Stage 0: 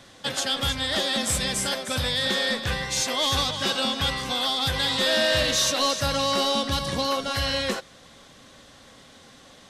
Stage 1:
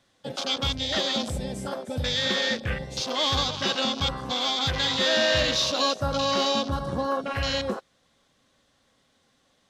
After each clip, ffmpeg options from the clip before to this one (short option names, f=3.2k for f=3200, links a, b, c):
-af "afwtdn=0.0398"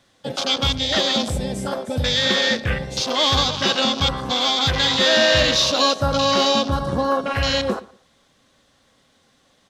-filter_complex "[0:a]asplit=2[a][b];[b]adelay=117,lowpass=f=4.7k:p=1,volume=-20dB,asplit=2[c][d];[d]adelay=117,lowpass=f=4.7k:p=1,volume=0.26[e];[a][c][e]amix=inputs=3:normalize=0,volume=6.5dB"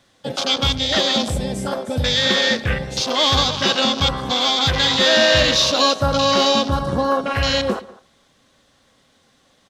-filter_complex "[0:a]asplit=2[a][b];[b]adelay=200,highpass=300,lowpass=3.4k,asoftclip=type=hard:threshold=-16dB,volume=-20dB[c];[a][c]amix=inputs=2:normalize=0,volume=1.5dB"